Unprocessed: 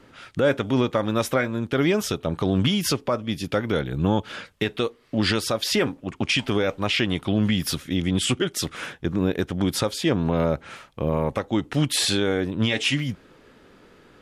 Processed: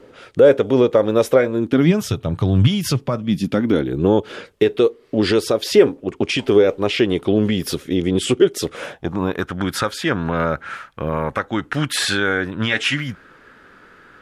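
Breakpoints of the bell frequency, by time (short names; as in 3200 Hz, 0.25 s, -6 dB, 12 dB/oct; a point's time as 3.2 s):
bell +14 dB 0.87 oct
1.51 s 460 Hz
2.07 s 110 Hz
2.85 s 110 Hz
4.07 s 410 Hz
8.6 s 410 Hz
9.57 s 1500 Hz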